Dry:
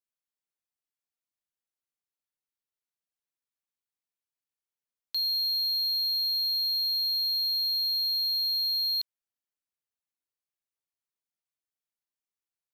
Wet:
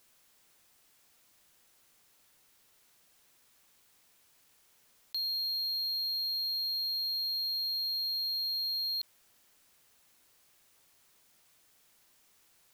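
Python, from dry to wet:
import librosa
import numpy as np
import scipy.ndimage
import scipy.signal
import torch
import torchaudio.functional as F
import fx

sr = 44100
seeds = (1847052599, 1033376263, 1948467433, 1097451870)

y = fx.env_flatten(x, sr, amount_pct=50)
y = y * 10.0 ** (-5.5 / 20.0)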